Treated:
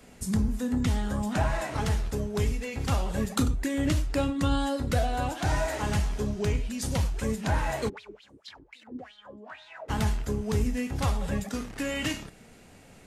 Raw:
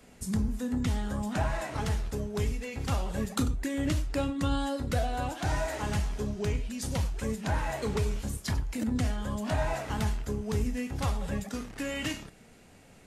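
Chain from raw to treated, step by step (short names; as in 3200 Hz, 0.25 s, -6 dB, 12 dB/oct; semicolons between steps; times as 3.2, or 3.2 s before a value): 7.88–9.88 wah 5.4 Hz -> 1.5 Hz 300–3900 Hz, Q 6.9; gain +3 dB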